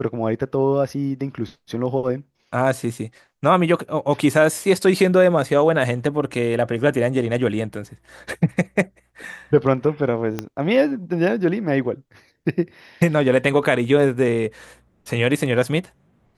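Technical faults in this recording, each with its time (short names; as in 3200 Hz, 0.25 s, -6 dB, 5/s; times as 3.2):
10.39 pop -11 dBFS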